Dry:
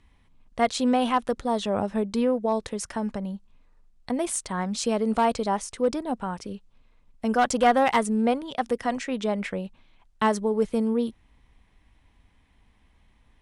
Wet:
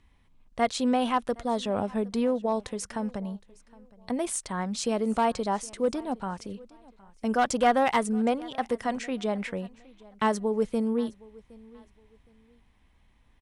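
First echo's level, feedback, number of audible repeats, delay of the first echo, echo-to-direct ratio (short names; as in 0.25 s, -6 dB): -23.0 dB, 27%, 2, 0.765 s, -22.5 dB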